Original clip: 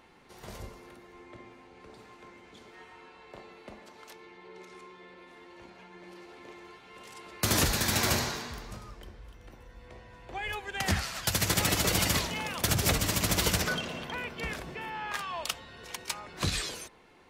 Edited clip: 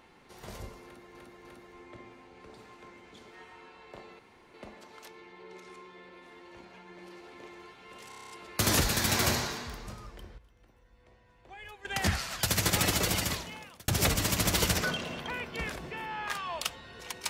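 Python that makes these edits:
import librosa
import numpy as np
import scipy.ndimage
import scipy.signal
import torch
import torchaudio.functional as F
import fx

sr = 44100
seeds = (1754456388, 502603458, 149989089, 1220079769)

y = fx.edit(x, sr, fx.repeat(start_s=0.85, length_s=0.3, count=3),
    fx.insert_room_tone(at_s=3.59, length_s=0.35),
    fx.stutter(start_s=7.14, slice_s=0.03, count=8),
    fx.clip_gain(start_s=9.22, length_s=1.47, db=-11.5),
    fx.fade_out_span(start_s=11.73, length_s=0.99), tone=tone)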